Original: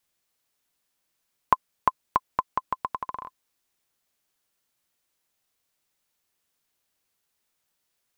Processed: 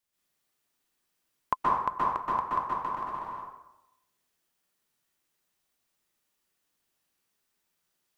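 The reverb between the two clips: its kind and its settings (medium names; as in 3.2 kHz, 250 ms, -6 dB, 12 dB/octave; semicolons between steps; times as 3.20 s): plate-style reverb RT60 0.9 s, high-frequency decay 0.65×, pre-delay 115 ms, DRR -7 dB; trim -8 dB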